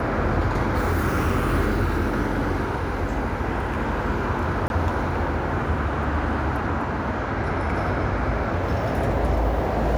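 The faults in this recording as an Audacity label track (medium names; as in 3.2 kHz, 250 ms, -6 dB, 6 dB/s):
4.680000	4.700000	dropout 21 ms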